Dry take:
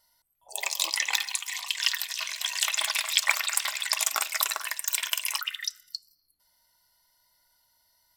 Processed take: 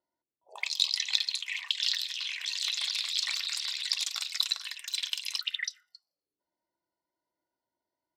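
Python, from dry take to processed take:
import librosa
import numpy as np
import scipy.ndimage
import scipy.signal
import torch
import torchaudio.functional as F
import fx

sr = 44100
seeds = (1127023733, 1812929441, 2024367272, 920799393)

y = fx.cheby_harmonics(x, sr, harmonics=(5,), levels_db=(-20,), full_scale_db=-3.0)
y = fx.auto_wah(y, sr, base_hz=340.0, top_hz=4100.0, q=4.3, full_db=-24.5, direction='up')
y = fx.transient(y, sr, attack_db=-11, sustain_db=4, at=(1.86, 3.91))
y = y * 10.0 ** (3.0 / 20.0)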